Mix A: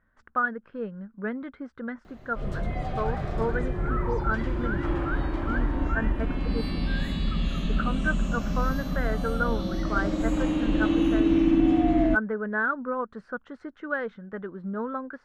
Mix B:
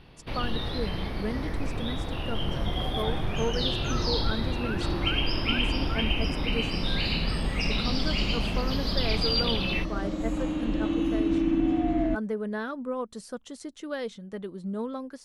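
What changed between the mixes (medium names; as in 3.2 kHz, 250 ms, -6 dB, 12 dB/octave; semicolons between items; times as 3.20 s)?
speech: remove resonant low-pass 1.5 kHz, resonance Q 5.2; first sound: unmuted; second sound -4.0 dB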